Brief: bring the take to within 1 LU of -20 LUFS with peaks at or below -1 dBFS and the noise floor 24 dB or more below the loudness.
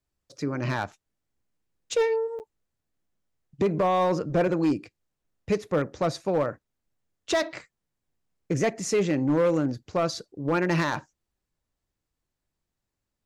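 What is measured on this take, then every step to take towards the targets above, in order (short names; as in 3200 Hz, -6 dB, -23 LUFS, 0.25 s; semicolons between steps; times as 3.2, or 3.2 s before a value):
clipped 1.0%; flat tops at -17.5 dBFS; dropouts 1; longest dropout 9.0 ms; loudness -26.5 LUFS; peak -17.5 dBFS; loudness target -20.0 LUFS
-> clip repair -17.5 dBFS; interpolate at 2.39, 9 ms; gain +6.5 dB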